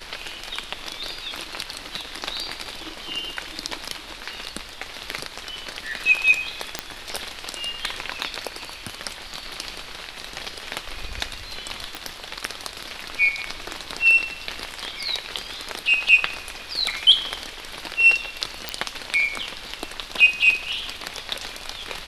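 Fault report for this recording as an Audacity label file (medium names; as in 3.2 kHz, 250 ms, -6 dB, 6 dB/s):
6.790000	6.790000	pop -7 dBFS
11.950000	11.950000	pop
18.690000	18.690000	pop -9 dBFS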